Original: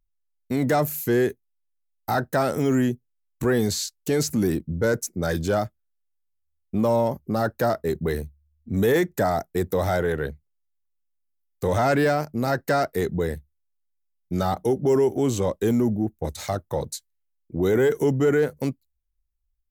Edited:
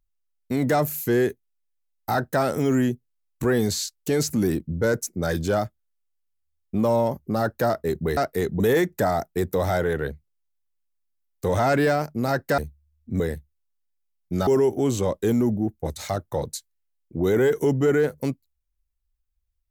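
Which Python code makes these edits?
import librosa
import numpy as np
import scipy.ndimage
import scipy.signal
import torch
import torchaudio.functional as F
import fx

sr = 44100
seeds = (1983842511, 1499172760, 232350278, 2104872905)

y = fx.edit(x, sr, fx.swap(start_s=8.17, length_s=0.62, other_s=12.77, other_length_s=0.43),
    fx.cut(start_s=14.47, length_s=0.39), tone=tone)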